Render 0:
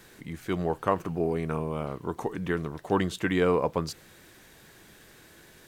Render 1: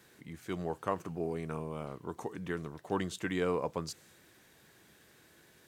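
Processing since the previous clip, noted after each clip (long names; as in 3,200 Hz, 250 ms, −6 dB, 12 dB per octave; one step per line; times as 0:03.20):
dynamic equaliser 7,200 Hz, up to +6 dB, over −56 dBFS, Q 0.98
high-pass filter 70 Hz
level −8 dB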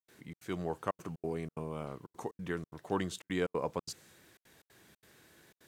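gate pattern ".xxx.xxxxxx.xx" 182 BPM −60 dB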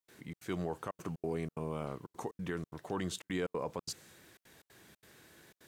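brickwall limiter −27 dBFS, peak gain reduction 10 dB
level +2 dB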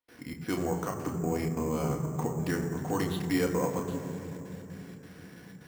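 on a send at −1.5 dB: convolution reverb RT60 3.6 s, pre-delay 4 ms
on the sum: bad sample-rate conversion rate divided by 6×, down filtered, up hold
level +5 dB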